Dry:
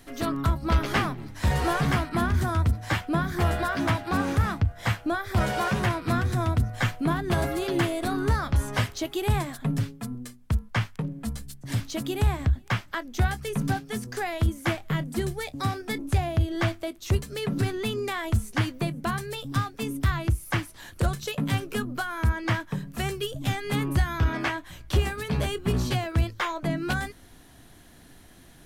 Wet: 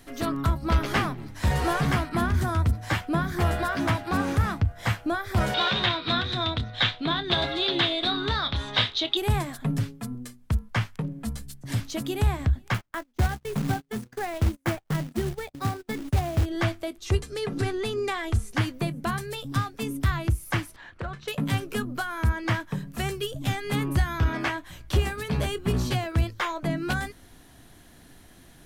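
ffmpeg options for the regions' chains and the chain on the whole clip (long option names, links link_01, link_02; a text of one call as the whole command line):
ffmpeg -i in.wav -filter_complex "[0:a]asettb=1/sr,asplit=3[link_01][link_02][link_03];[link_01]atrim=end=5.544[link_04];[link_02]atrim=start=5.54:end=9.17,asetpts=PTS-STARTPTS,afade=type=in:duration=0.004:curve=qsin,afade=type=out:start_time=3.626:duration=0.004:curve=qsin,lowpass=frequency=3700:width_type=q:width=11,lowshelf=frequency=240:gain=-8.5,asplit=2[link_05][link_06];[link_06]adelay=28,volume=-13dB[link_07];[link_05][link_07]amix=inputs=2:normalize=0,atrim=end_sample=160083[link_08];[link_03]atrim=start=9.166[link_09];[link_04][link_08]acrossfade=duration=0.004:curve1=hsin:curve2=qsin[link_10];[link_10][link_09]acrossfade=duration=0.004:curve1=qsin:curve2=hsin,asettb=1/sr,asplit=3[link_11][link_12][link_13];[link_11]atrim=end=12.744[link_14];[link_12]atrim=start=12.74:end=16.46,asetpts=PTS-STARTPTS,afade=type=in:duration=0.004:curve=qsin,afade=type=out:start_time=3.716:duration=0.004:curve=qsin,agate=range=-28dB:threshold=-36dB:ratio=16:release=100:detection=peak,highshelf=frequency=2600:gain=-11.5,acrusher=bits=3:mode=log:mix=0:aa=0.000001[link_15];[link_13]atrim=start=16.456[link_16];[link_14][link_15]acrossfade=duration=0.004:curve1=hsin:curve2=qsin[link_17];[link_17][link_16]acrossfade=duration=0.004:curve1=qsin:curve2=hsin,asettb=1/sr,asplit=3[link_18][link_19][link_20];[link_18]atrim=end=16.974[link_21];[link_19]atrim=start=16.97:end=18.51,asetpts=PTS-STARTPTS,afade=type=in:duration=0.004:curve=qsin,afade=type=out:start_time=1.536:duration=0.004:curve=qsin,lowpass=9600,equalizer=frequency=150:width_type=o:width=1.3:gain=-3.5,aecho=1:1:2.5:0.39,atrim=end_sample=67914[link_22];[link_20]atrim=start=18.506[link_23];[link_21][link_22]acrossfade=duration=0.004:curve1=hsin:curve2=qsin[link_24];[link_24][link_23]acrossfade=duration=0.004:curve1=qsin:curve2=hsin,asettb=1/sr,asplit=3[link_25][link_26][link_27];[link_25]atrim=end=20.764[link_28];[link_26]atrim=start=20.76:end=21.28,asetpts=PTS-STARTPTS,afade=type=in:duration=0.004:curve=qsin,afade=type=out:start_time=0.516:duration=0.004:curve=qsin,lowpass=1700,tiltshelf=frequency=920:gain=-7,acompressor=threshold=-30dB:ratio=2.5:attack=3.2:release=140:knee=1:detection=peak[link_29];[link_27]atrim=start=21.276[link_30];[link_28][link_29]acrossfade=duration=0.004:curve1=hsin:curve2=qsin[link_31];[link_31][link_30]acrossfade=duration=0.004:curve1=qsin:curve2=hsin" out.wav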